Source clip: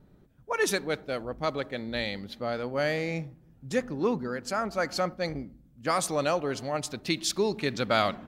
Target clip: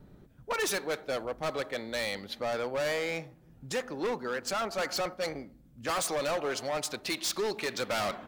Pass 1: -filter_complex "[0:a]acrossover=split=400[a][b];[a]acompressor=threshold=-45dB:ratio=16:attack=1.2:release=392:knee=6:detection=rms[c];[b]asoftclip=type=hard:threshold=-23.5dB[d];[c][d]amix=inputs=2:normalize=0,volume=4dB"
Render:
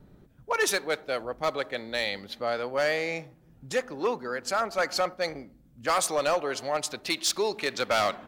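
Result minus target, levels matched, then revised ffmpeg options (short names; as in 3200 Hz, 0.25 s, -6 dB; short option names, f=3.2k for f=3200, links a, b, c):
hard clip: distortion -8 dB
-filter_complex "[0:a]acrossover=split=400[a][b];[a]acompressor=threshold=-45dB:ratio=16:attack=1.2:release=392:knee=6:detection=rms[c];[b]asoftclip=type=hard:threshold=-32.5dB[d];[c][d]amix=inputs=2:normalize=0,volume=4dB"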